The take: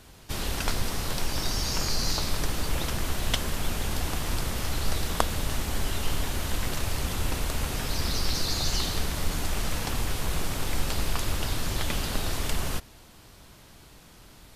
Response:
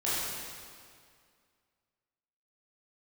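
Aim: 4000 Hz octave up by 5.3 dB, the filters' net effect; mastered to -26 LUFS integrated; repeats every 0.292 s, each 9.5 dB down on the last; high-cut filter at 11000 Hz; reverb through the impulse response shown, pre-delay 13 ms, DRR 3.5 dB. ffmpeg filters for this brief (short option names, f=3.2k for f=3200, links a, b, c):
-filter_complex "[0:a]lowpass=11k,equalizer=f=4k:t=o:g=6.5,aecho=1:1:292|584|876|1168:0.335|0.111|0.0365|0.012,asplit=2[a][b];[1:a]atrim=start_sample=2205,adelay=13[c];[b][c]afir=irnorm=-1:irlink=0,volume=-13dB[d];[a][d]amix=inputs=2:normalize=0"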